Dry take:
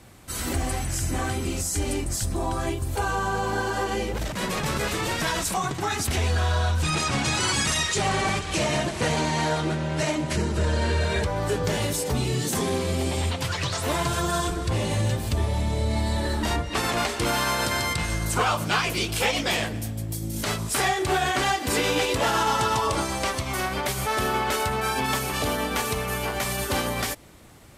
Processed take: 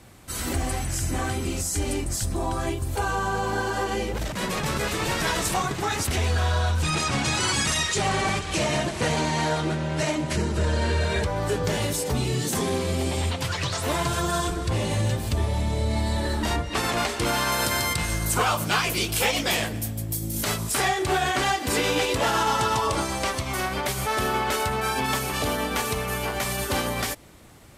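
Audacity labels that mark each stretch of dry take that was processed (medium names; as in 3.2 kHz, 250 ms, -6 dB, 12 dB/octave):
4.550000	5.180000	echo throw 440 ms, feedback 55%, level -5 dB
17.520000	20.720000	treble shelf 11 kHz +12 dB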